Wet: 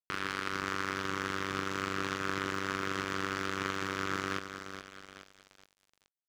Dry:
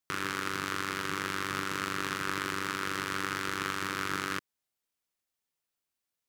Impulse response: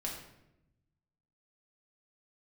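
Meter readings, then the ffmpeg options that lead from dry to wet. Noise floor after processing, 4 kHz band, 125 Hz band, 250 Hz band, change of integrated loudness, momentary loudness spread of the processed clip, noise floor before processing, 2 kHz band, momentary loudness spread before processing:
under -85 dBFS, -2.5 dB, +0.5 dB, +0.5 dB, -1.5 dB, 11 LU, under -85 dBFS, -2.0 dB, 1 LU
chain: -af "afftdn=nr=16:nf=-46,aecho=1:1:424|848|1272|1696|2120|2544|2968:0.398|0.227|0.129|0.0737|0.042|0.024|0.0137,aeval=exprs='sgn(val(0))*max(abs(val(0))-0.0075,0)':c=same"

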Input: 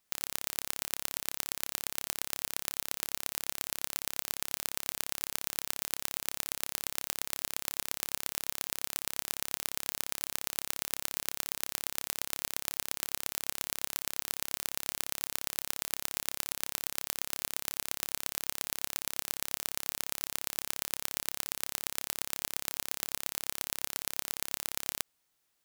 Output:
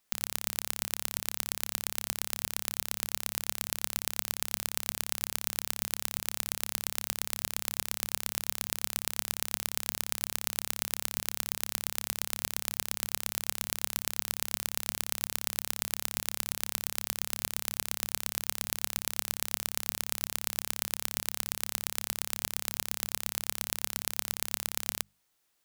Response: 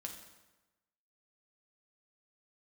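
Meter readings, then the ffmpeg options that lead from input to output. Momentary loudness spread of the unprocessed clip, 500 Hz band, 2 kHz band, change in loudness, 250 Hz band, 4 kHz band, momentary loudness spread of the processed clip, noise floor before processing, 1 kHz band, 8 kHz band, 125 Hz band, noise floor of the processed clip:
1 LU, +2.0 dB, +2.0 dB, +2.0 dB, +2.0 dB, +2.0 dB, 1 LU, -77 dBFS, +2.0 dB, +2.0 dB, +1.0 dB, -67 dBFS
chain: -af "bandreject=f=50:t=h:w=6,bandreject=f=100:t=h:w=6,bandreject=f=150:t=h:w=6,bandreject=f=200:t=h:w=6,volume=2dB"

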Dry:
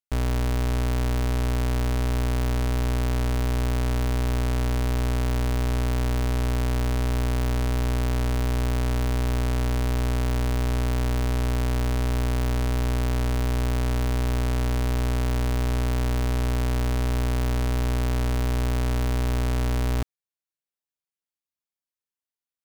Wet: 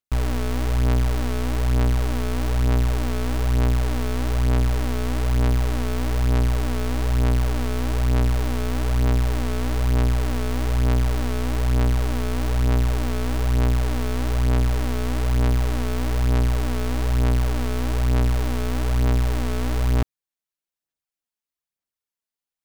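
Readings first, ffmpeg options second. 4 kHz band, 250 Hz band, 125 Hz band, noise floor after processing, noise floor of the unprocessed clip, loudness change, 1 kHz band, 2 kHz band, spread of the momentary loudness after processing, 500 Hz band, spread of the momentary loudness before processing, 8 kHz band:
+1.0 dB, +2.5 dB, +2.5 dB, under -85 dBFS, under -85 dBFS, +2.5 dB, +1.5 dB, +1.5 dB, 4 LU, +2.0 dB, 0 LU, +1.0 dB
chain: -af "aphaser=in_gain=1:out_gain=1:delay=4.7:decay=0.48:speed=1.1:type=sinusoidal"

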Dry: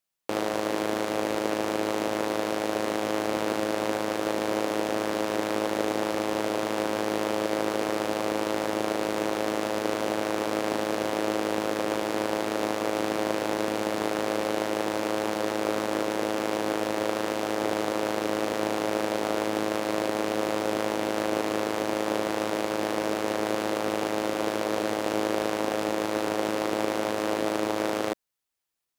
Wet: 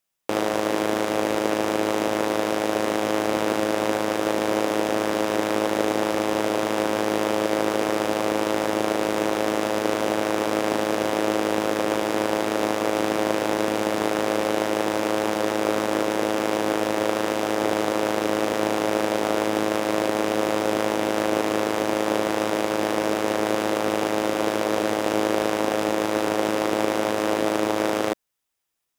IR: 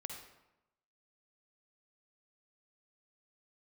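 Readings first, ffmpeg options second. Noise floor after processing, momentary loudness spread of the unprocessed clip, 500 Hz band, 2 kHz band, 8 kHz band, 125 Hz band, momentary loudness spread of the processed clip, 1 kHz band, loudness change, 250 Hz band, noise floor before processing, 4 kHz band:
-26 dBFS, 1 LU, +4.5 dB, +4.5 dB, +4.5 dB, +4.5 dB, 1 LU, +4.5 dB, +4.5 dB, +4.5 dB, -31 dBFS, +4.0 dB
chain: -af "bandreject=f=4.3k:w=13,volume=4.5dB"

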